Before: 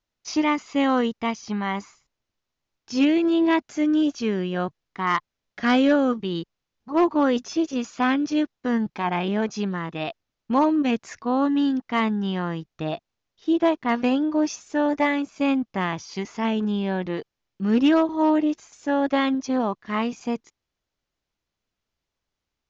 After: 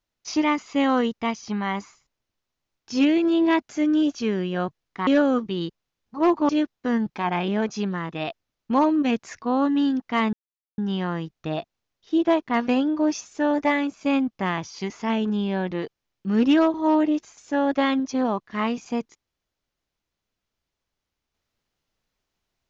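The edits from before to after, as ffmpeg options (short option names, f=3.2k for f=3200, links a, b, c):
-filter_complex "[0:a]asplit=4[a][b][c][d];[a]atrim=end=5.072[e];[b]atrim=start=5.808:end=7.232[f];[c]atrim=start=8.288:end=12.13,asetpts=PTS-STARTPTS,afade=t=out:st=3.838:d=0.004:c=hsin,apad=pad_dur=0.45[g];[d]atrim=start=12.13,asetpts=PTS-STARTPTS,afade=t=in:d=0.004:c=hsin[h];[e][f]acrossfade=d=0.004:c1=hsin:c2=hsin[i];[g][h]concat=n=2:v=0:a=1[j];[i][j]acrossfade=d=0.004:c1=hsin:c2=hsin"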